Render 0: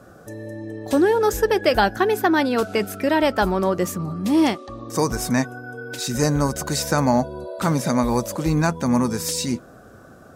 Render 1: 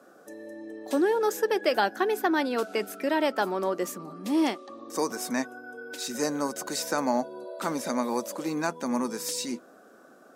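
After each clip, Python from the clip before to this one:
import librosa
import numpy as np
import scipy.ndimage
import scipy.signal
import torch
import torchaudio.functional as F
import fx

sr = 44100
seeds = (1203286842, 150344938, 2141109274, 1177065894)

y = scipy.signal.sosfilt(scipy.signal.butter(4, 240.0, 'highpass', fs=sr, output='sos'), x)
y = y * librosa.db_to_amplitude(-6.5)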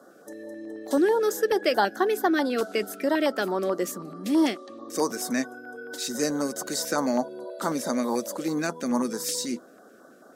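y = fx.filter_lfo_notch(x, sr, shape='square', hz=4.6, low_hz=930.0, high_hz=2500.0, q=1.2)
y = y * librosa.db_to_amplitude(3.0)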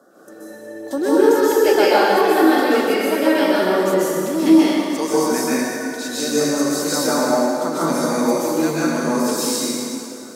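y = fx.rev_plate(x, sr, seeds[0], rt60_s=2.5, hf_ratio=0.85, predelay_ms=115, drr_db=-9.5)
y = y * librosa.db_to_amplitude(-1.0)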